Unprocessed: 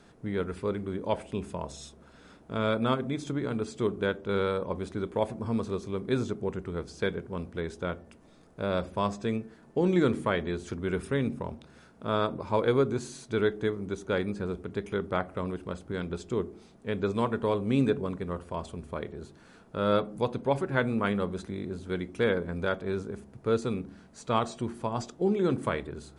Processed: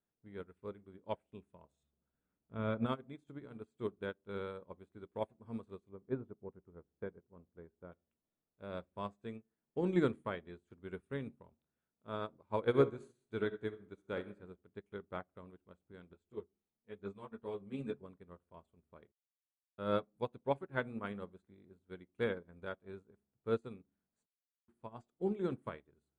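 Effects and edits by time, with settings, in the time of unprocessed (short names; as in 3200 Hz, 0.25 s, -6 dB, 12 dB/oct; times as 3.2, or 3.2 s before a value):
1.83–2.86 tone controls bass +6 dB, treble -14 dB
5.89–7.92 LPF 1200 Hz
12.64–14.34 reverb throw, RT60 0.82 s, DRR 6 dB
16.13–18 ensemble effect
19.12–19.78 mute
24.26–24.68 mute
whole clip: bell 5400 Hz -13 dB 0.55 oct; upward expander 2.5:1, over -42 dBFS; gain -3 dB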